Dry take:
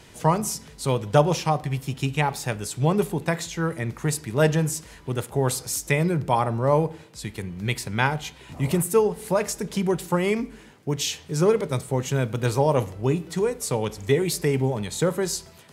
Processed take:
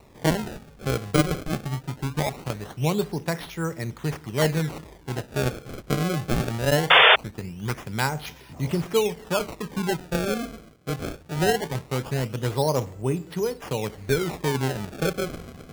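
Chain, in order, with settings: reverse; upward compressor, threshold -28 dBFS; reverse; air absorption 56 m; decimation with a swept rate 27×, swing 160% 0.21 Hz; painted sound noise, 6.9–7.16, 390–3600 Hz -11 dBFS; gain -2.5 dB

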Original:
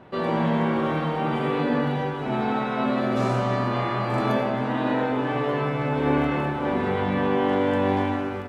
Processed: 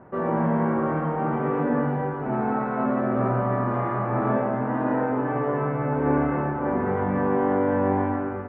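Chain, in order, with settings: inverse Chebyshev low-pass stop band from 8800 Hz, stop band 80 dB

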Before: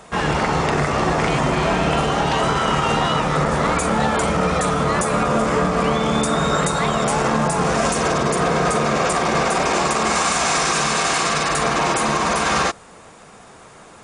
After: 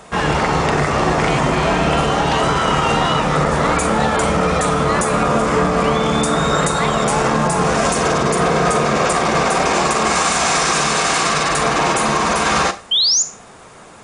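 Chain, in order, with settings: painted sound rise, 12.91–13.23, 3000–7300 Hz -17 dBFS; Schroeder reverb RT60 0.35 s, combs from 30 ms, DRR 12 dB; gain +2.5 dB

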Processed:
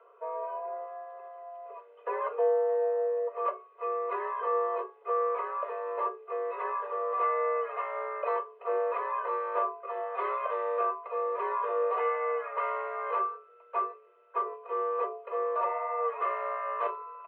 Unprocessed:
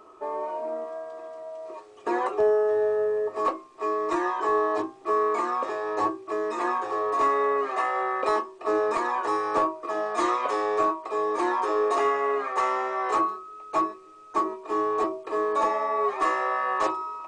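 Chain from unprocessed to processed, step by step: air absorption 260 m; comb 2 ms, depth 76%; mistuned SSB +55 Hz 350–3000 Hz; gain -6.5 dB

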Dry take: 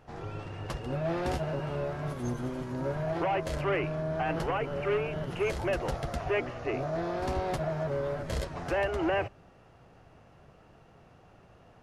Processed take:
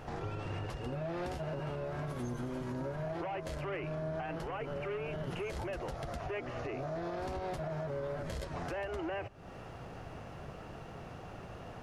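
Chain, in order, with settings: compressor 10:1, threshold -44 dBFS, peak gain reduction 19 dB; limiter -40.5 dBFS, peak gain reduction 9 dB; gain +10 dB

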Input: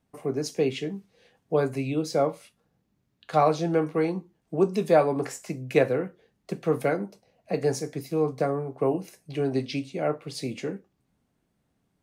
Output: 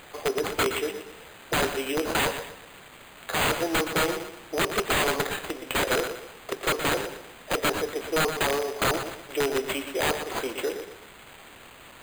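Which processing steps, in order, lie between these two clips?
HPF 390 Hz 24 dB/oct; in parallel at +3 dB: compressor 5:1, threshold -34 dBFS, peak gain reduction 17.5 dB; on the sum: wrapped overs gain 18.5 dB; requantised 8-bit, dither triangular; dark delay 0.12 s, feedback 37%, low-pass 3800 Hz, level -8.5 dB; careless resampling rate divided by 8×, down none, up hold

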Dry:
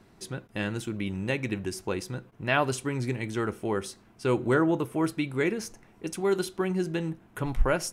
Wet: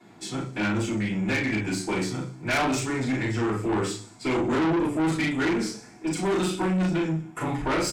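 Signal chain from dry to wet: formant shift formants -2 st; doubler 38 ms -3 dB; thin delay 62 ms, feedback 60%, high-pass 5000 Hz, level -12 dB; reverb RT60 0.40 s, pre-delay 3 ms, DRR -12 dB; tube stage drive 17 dB, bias 0.25; gain -4 dB

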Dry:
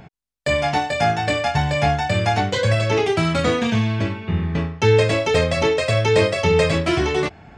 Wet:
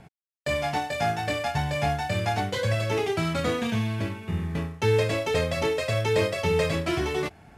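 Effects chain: CVSD 64 kbps; gain -7 dB

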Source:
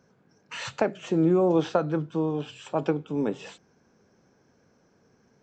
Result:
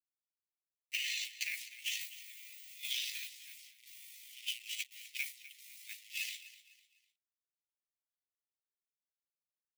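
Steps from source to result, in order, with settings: level-crossing sampler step -41.5 dBFS; steep high-pass 2000 Hz 96 dB/oct; gate -47 dBFS, range -15 dB; limiter -34 dBFS, peak gain reduction 7 dB; compressor, threshold -47 dBFS, peak gain reduction 7.5 dB; granular stretch 1.8×, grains 38 ms; on a send: feedback echo 0.251 s, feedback 34%, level -16 dB; on the sum: gain +13.5 dB

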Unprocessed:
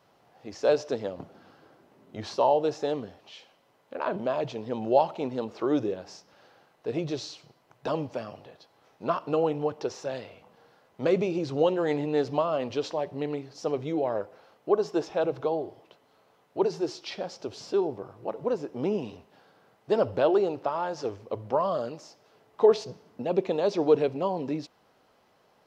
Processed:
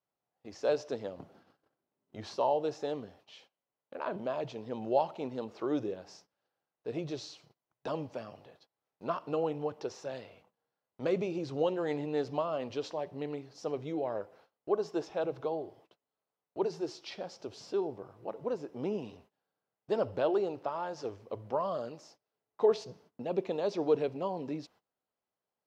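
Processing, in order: gate -53 dBFS, range -22 dB; gain -6.5 dB

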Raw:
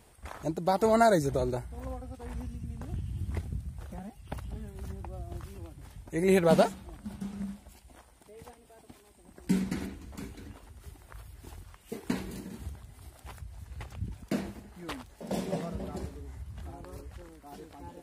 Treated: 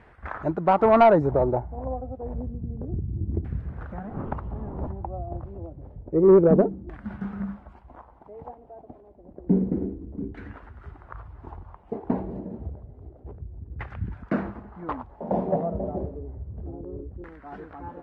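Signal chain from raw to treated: 3.15–4.86 wind noise 300 Hz -49 dBFS; LFO low-pass saw down 0.29 Hz 330–1800 Hz; soft clip -13.5 dBFS, distortion -17 dB; gain +5.5 dB

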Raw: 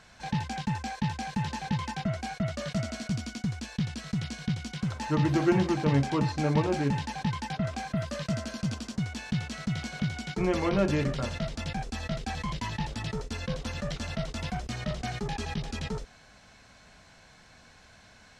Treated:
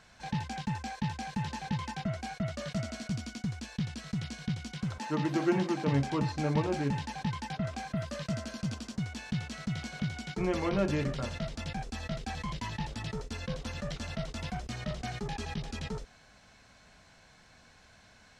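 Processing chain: 4.98–5.88 HPF 160 Hz 24 dB/oct; gain -3.5 dB

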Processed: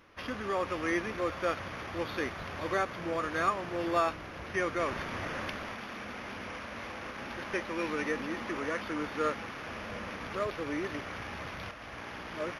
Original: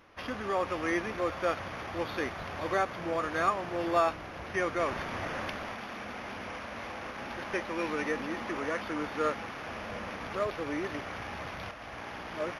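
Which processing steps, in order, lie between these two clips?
bell 750 Hz -4.5 dB 0.67 oct

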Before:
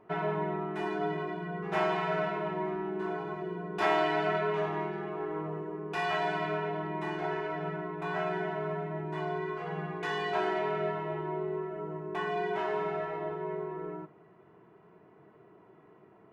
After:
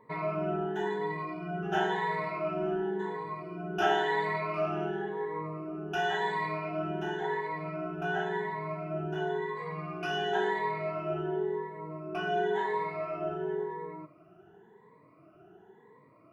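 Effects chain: moving spectral ripple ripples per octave 0.99, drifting +0.94 Hz, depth 21 dB; gain -4 dB

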